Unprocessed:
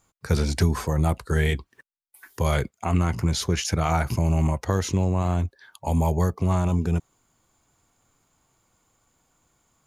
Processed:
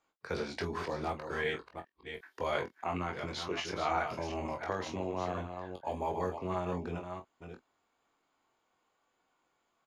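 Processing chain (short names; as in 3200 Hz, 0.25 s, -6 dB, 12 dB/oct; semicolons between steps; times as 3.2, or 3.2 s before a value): reverse delay 0.36 s, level -7 dB; three-band isolator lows -19 dB, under 280 Hz, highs -22 dB, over 4500 Hz; early reflections 22 ms -5 dB, 46 ms -14 dB; gain -7.5 dB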